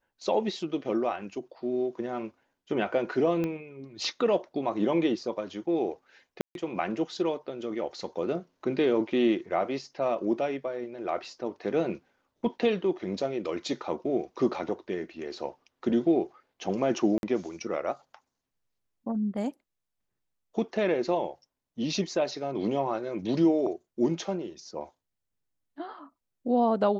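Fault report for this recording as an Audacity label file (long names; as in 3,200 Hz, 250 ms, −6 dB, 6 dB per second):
3.440000	3.440000	click −19 dBFS
6.410000	6.550000	drop-out 142 ms
17.180000	17.230000	drop-out 51 ms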